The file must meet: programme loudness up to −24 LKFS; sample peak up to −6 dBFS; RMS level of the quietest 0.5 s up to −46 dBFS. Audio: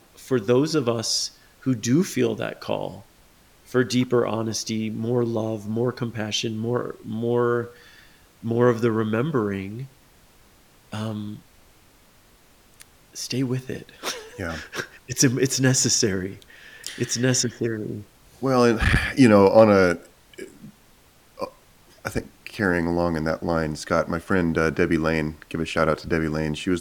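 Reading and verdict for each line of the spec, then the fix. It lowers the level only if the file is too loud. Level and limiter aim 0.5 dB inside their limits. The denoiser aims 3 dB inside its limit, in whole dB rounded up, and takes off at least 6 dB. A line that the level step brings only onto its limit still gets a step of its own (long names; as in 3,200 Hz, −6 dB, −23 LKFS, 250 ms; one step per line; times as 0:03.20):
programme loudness −23.0 LKFS: out of spec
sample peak −1.5 dBFS: out of spec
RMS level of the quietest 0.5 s −55 dBFS: in spec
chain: level −1.5 dB
brickwall limiter −6.5 dBFS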